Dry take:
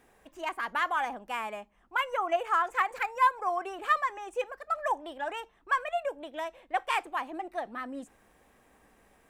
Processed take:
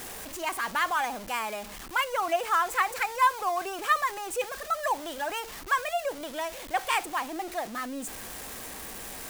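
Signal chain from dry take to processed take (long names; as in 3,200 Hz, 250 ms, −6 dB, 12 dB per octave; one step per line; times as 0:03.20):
converter with a step at zero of −39 dBFS
high-shelf EQ 4,100 Hz +10.5 dB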